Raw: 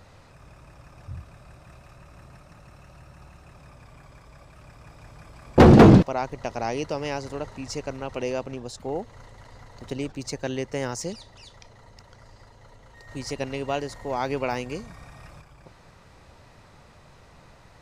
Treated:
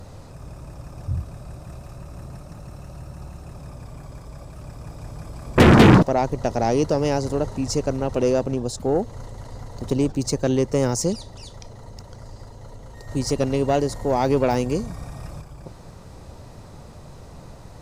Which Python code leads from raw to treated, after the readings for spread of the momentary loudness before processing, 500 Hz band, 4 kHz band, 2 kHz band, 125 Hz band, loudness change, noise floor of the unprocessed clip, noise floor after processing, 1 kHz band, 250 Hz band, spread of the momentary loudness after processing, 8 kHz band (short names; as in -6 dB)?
23 LU, +4.0 dB, +5.5 dB, +4.5 dB, +2.0 dB, +2.0 dB, -53 dBFS, -43 dBFS, +3.0 dB, +2.0 dB, 21 LU, +8.0 dB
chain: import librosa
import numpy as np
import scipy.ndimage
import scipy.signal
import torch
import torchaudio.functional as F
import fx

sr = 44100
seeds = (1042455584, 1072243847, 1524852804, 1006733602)

p1 = fx.peak_eq(x, sr, hz=2100.0, db=-12.5, octaves=2.3)
p2 = fx.fold_sine(p1, sr, drive_db=14, ceiling_db=-6.0)
y = p1 + (p2 * librosa.db_to_amplitude(-8.5))